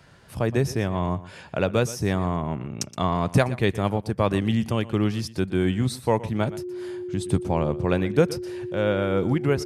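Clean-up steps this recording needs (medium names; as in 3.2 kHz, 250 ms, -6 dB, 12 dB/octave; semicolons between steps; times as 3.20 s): band-stop 360 Hz, Q 30; inverse comb 120 ms -17 dB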